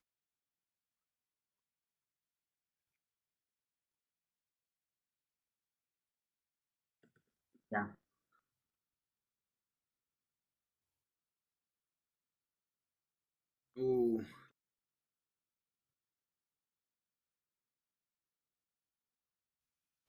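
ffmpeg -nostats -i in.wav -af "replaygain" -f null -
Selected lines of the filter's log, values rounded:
track_gain = +55.7 dB
track_peak = 0.050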